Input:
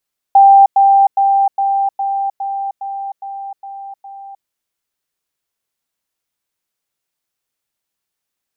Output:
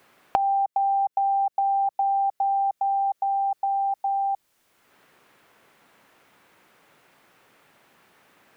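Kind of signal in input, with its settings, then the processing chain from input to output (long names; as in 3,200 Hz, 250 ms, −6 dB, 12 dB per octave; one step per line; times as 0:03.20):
level staircase 789 Hz −3 dBFS, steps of −3 dB, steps 10, 0.31 s 0.10 s
downward compressor 6 to 1, threshold −18 dBFS
dynamic equaliser 880 Hz, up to −4 dB, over −31 dBFS
multiband upward and downward compressor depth 100%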